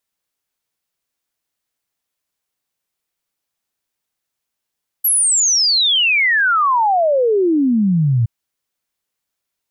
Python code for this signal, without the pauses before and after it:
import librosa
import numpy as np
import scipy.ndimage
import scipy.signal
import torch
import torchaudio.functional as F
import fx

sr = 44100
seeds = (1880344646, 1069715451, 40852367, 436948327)

y = fx.ess(sr, length_s=3.22, from_hz=12000.0, to_hz=110.0, level_db=-11.5)